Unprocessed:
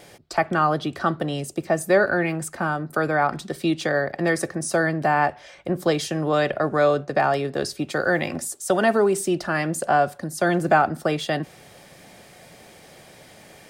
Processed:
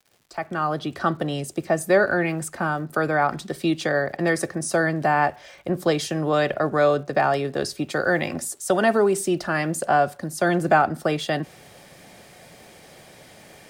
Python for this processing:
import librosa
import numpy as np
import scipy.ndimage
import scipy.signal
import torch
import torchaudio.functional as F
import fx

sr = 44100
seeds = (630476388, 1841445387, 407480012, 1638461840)

y = fx.fade_in_head(x, sr, length_s=1.06)
y = fx.dmg_crackle(y, sr, seeds[0], per_s=240.0, level_db=-47.0)